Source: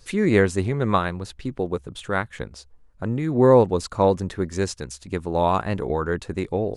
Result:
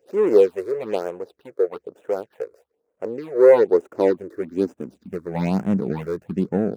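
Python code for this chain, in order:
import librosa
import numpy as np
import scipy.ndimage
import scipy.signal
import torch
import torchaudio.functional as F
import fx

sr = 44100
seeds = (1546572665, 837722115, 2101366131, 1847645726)

y = scipy.ndimage.median_filter(x, 41, mode='constant')
y = fx.phaser_stages(y, sr, stages=6, low_hz=200.0, high_hz=4700.0, hz=1.1, feedback_pct=5)
y = fx.filter_sweep_highpass(y, sr, from_hz=460.0, to_hz=190.0, start_s=3.44, end_s=5.38, q=3.3)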